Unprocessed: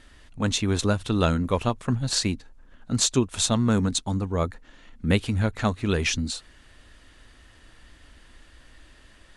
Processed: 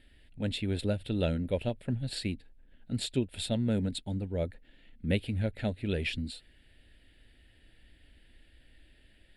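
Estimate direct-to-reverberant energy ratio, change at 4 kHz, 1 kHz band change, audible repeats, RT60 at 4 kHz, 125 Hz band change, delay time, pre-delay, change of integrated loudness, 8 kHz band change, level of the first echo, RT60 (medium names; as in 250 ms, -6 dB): no reverb, -10.0 dB, -17.0 dB, no echo, no reverb, -7.0 dB, no echo, no reverb, -8.0 dB, -19.0 dB, no echo, no reverb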